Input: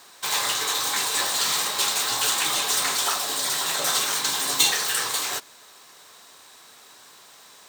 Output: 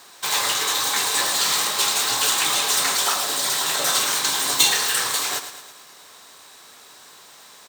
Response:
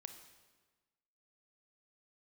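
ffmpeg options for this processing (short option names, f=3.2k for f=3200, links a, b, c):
-af "aecho=1:1:110|220|330|440|550|660:0.282|0.152|0.0822|0.0444|0.024|0.0129,volume=2.5dB"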